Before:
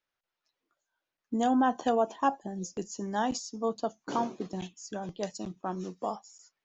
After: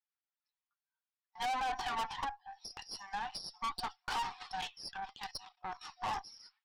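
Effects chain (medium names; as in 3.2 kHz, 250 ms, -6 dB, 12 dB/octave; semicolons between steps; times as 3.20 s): FFT band-pass 730–5700 Hz; gate with hold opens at -59 dBFS; 2.24–3.64 s: compression 3:1, threshold -48 dBFS, peak gain reduction 18.5 dB; peak limiter -28 dBFS, peak gain reduction 10 dB; 4.90–5.82 s: level held to a coarse grid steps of 12 dB; flange 0.71 Hz, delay 2.1 ms, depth 3.8 ms, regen -33%; valve stage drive 48 dB, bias 0.75; trim +15.5 dB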